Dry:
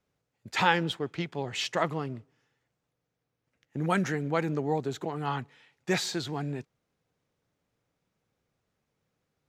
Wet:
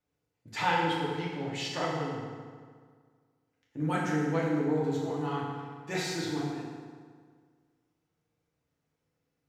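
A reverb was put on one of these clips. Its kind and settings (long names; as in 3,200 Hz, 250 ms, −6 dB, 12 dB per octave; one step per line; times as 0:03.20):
feedback delay network reverb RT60 1.8 s, low-frequency decay 1.05×, high-frequency decay 0.7×, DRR −5.5 dB
level −9 dB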